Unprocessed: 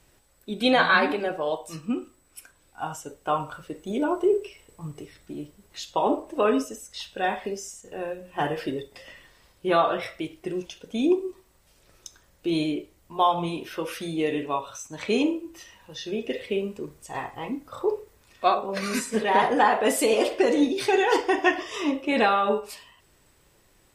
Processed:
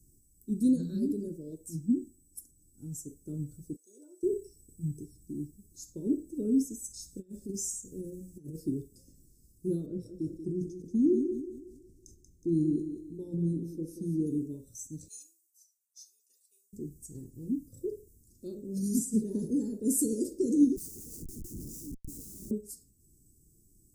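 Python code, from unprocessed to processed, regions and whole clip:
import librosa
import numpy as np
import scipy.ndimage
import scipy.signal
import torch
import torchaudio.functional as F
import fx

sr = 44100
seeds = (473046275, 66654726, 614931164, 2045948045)

y = fx.chain(x, sr, fx.highpass(hz=650.0, slope=24),
    fx.high_shelf(hz=9400.0, db=-11.5), at=(3.76, 4.23))
y = fx.chain(y, sr, fx.peak_eq(hz=6800.0, db=4.5, octaves=1.4),
    fx.over_compress(threshold_db=-31.0, ratio=-0.5), at=(6.84, 8.57))
y = fx.chain(y, sr, fx.lowpass(hz=2400.0, slope=6),
    fx.echo_thinned(ms=184, feedback_pct=47, hz=230.0, wet_db=-7),
    fx.sustainer(db_per_s=97.0), at=(9.86, 14.27))
y = fx.chain(y, sr, fx.highpass(hz=1500.0, slope=24),
    fx.band_widen(depth_pct=100), at=(15.08, 16.73))
y = fx.chain(y, sr, fx.differentiator(),
    fx.comb(ms=6.4, depth=0.71),
    fx.schmitt(flips_db=-41.5), at=(20.76, 22.51))
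y = scipy.signal.sosfilt(scipy.signal.cheby2(4, 50, [690.0, 3300.0], 'bandstop', fs=sr, output='sos'), y)
y = fx.dynamic_eq(y, sr, hz=160.0, q=1.4, threshold_db=-41.0, ratio=4.0, max_db=3)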